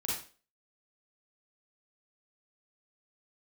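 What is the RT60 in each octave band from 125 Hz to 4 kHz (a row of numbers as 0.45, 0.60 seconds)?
0.35, 0.40, 0.40, 0.35, 0.35, 0.35 seconds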